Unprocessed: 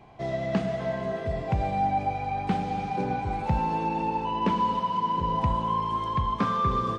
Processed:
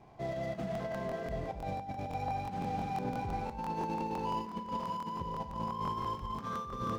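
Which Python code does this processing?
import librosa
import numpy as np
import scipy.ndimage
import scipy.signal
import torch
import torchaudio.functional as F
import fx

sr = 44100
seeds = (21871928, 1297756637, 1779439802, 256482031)

y = scipy.signal.medfilt(x, 15)
y = fx.over_compress(y, sr, threshold_db=-29.0, ratio=-0.5)
y = fx.rev_schroeder(y, sr, rt60_s=0.35, comb_ms=28, drr_db=9.0)
y = fx.buffer_crackle(y, sr, first_s=0.73, period_s=0.17, block=1024, kind='repeat')
y = y * 10.0 ** (-7.5 / 20.0)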